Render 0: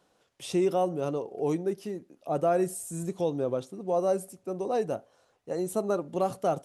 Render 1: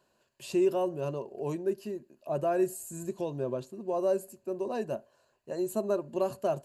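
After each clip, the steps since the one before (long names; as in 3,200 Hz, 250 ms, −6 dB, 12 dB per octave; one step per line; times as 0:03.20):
EQ curve with evenly spaced ripples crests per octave 1.4, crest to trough 10 dB
level −4 dB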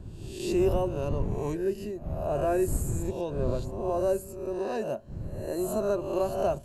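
peak hold with a rise ahead of every peak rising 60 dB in 0.76 s
wind on the microphone 120 Hz −35 dBFS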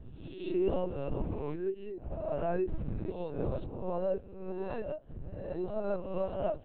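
linear-prediction vocoder at 8 kHz pitch kept
level −5.5 dB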